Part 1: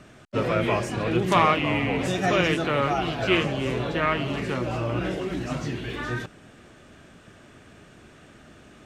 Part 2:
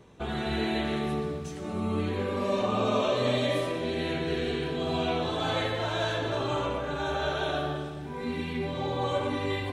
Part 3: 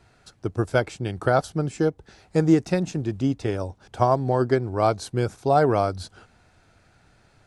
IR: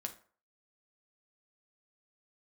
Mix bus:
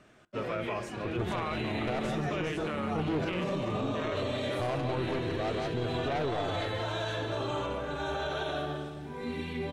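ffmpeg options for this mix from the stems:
-filter_complex "[0:a]bass=f=250:g=-5,treble=f=4k:g=-3,volume=-10.5dB,asplit=2[a][b];[b]volume=-7.5dB[c];[1:a]adelay=1000,volume=-6dB,asplit=2[d][e];[e]volume=-5.5dB[f];[2:a]lowpass=2.4k,asoftclip=type=tanh:threshold=-22.5dB,adelay=600,volume=-2.5dB,asplit=2[g][h];[h]volume=-5.5dB[i];[3:a]atrim=start_sample=2205[j];[c][f]amix=inputs=2:normalize=0[k];[k][j]afir=irnorm=-1:irlink=0[l];[i]aecho=0:1:172:1[m];[a][d][g][l][m]amix=inputs=5:normalize=0,alimiter=limit=-24dB:level=0:latency=1:release=42"

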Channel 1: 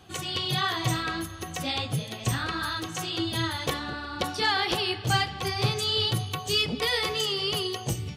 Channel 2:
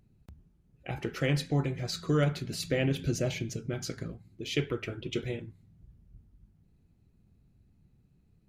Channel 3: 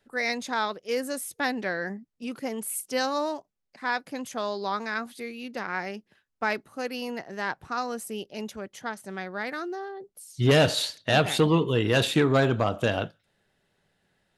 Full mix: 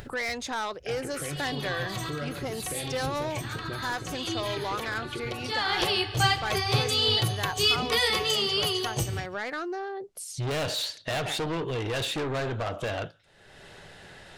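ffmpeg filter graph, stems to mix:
-filter_complex "[0:a]adelay=1100,volume=2dB,asplit=2[a][b];[b]volume=-21.5dB[c];[1:a]equalizer=f=5.9k:t=o:w=0.95:g=-14,alimiter=level_in=3dB:limit=-24dB:level=0:latency=1:release=105,volume=-3dB,volume=0dB,asplit=3[d][e][f];[e]volume=-11dB[g];[2:a]lowpass=8.8k,asoftclip=type=tanh:threshold=-26.5dB,volume=0.5dB[h];[f]apad=whole_len=412876[i];[a][i]sidechaincompress=threshold=-44dB:ratio=8:attack=11:release=560[j];[c][g]amix=inputs=2:normalize=0,aecho=0:1:141:1[k];[j][d][h][k]amix=inputs=4:normalize=0,equalizer=f=210:t=o:w=0.82:g=-7.5,acompressor=mode=upward:threshold=-28dB:ratio=2.5"

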